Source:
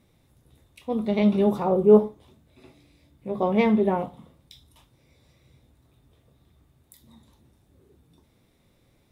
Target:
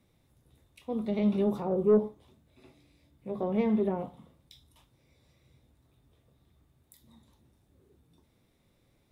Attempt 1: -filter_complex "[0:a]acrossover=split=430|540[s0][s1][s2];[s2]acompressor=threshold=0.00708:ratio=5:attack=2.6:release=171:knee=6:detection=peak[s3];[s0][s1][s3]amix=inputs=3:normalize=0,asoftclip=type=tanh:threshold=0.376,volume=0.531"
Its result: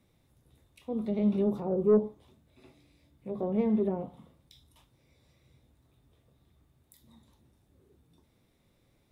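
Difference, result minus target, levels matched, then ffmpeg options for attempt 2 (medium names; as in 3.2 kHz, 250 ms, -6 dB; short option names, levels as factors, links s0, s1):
compression: peak gain reduction +8 dB
-filter_complex "[0:a]acrossover=split=430|540[s0][s1][s2];[s2]acompressor=threshold=0.0224:ratio=5:attack=2.6:release=171:knee=6:detection=peak[s3];[s0][s1][s3]amix=inputs=3:normalize=0,asoftclip=type=tanh:threshold=0.376,volume=0.531"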